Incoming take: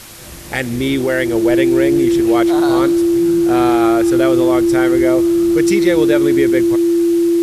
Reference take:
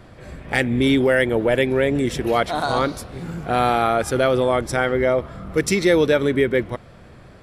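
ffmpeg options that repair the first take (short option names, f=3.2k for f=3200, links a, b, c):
-af "bandreject=f=340:w=30,afwtdn=0.018"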